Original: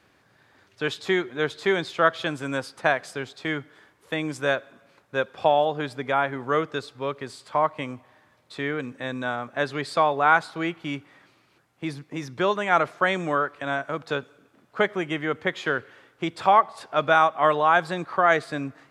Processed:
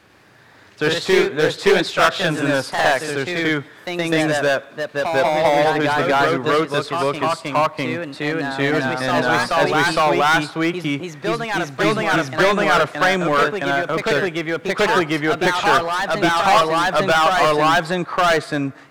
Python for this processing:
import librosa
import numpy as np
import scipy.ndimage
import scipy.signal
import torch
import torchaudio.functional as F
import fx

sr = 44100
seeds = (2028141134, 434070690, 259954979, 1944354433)

y = np.clip(x, -10.0 ** (-20.5 / 20.0), 10.0 ** (-20.5 / 20.0))
y = fx.echo_pitch(y, sr, ms=99, semitones=1, count=2, db_per_echo=-3.0)
y = y * 10.0 ** (8.5 / 20.0)